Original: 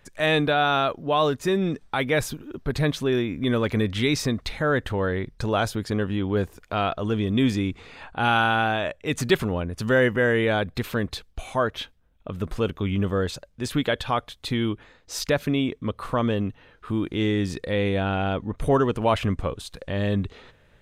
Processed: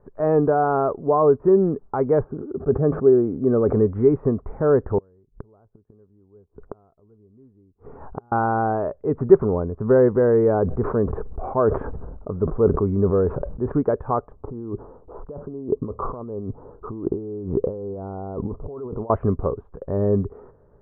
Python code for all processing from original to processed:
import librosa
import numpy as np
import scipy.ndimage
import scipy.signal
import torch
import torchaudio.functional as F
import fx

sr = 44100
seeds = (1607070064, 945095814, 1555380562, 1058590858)

y = fx.chain(x, sr, fx.moving_average(points=11),
    fx.notch_comb(f0_hz=980.0),
    fx.sustainer(db_per_s=66.0), at=(2.24, 3.73))
y = fx.chain(y, sr, fx.low_shelf(hz=230.0, db=8.5),
    fx.gate_flip(shuts_db=-16.0, range_db=-38), at=(4.98, 8.32))
y = fx.chain(y, sr, fx.lowpass(hz=2000.0, slope=12),
    fx.sustainer(db_per_s=34.0), at=(10.54, 13.72))
y = fx.chain(y, sr, fx.cheby2_lowpass(hz=2500.0, order=4, stop_db=40),
    fx.over_compress(threshold_db=-34.0, ratio=-1.0), at=(14.31, 19.1))
y = scipy.signal.sosfilt(scipy.signal.butter(6, 1200.0, 'lowpass', fs=sr, output='sos'), y)
y = fx.peak_eq(y, sr, hz=410.0, db=10.0, octaves=0.32)
y = y * librosa.db_to_amplitude(2.0)